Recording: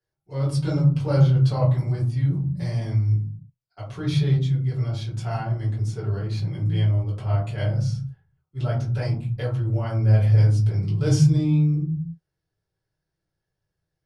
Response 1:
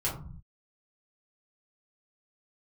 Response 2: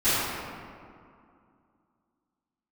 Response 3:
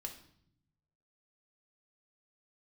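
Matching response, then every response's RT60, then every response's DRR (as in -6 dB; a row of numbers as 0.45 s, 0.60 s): 1; 0.45 s, 2.3 s, 0.70 s; -7.0 dB, -20.5 dB, 2.5 dB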